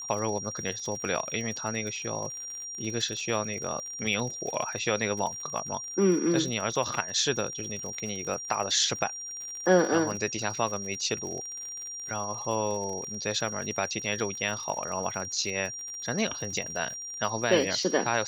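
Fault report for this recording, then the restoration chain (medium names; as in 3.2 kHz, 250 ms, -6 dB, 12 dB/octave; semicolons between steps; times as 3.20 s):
crackle 57 per s -35 dBFS
whine 5.7 kHz -36 dBFS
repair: de-click; band-stop 5.7 kHz, Q 30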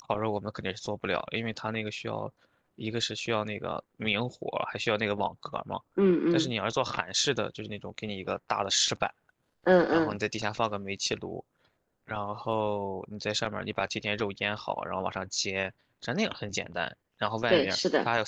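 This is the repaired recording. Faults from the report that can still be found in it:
nothing left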